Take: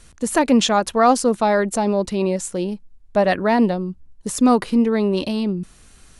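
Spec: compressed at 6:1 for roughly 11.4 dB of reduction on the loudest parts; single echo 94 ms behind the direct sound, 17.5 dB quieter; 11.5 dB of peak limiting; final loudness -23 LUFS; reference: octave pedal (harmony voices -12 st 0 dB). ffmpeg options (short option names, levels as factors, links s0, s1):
-filter_complex "[0:a]acompressor=threshold=0.0708:ratio=6,alimiter=limit=0.0631:level=0:latency=1,aecho=1:1:94:0.133,asplit=2[s0][s1];[s1]asetrate=22050,aresample=44100,atempo=2,volume=1[s2];[s0][s2]amix=inputs=2:normalize=0,volume=2.11"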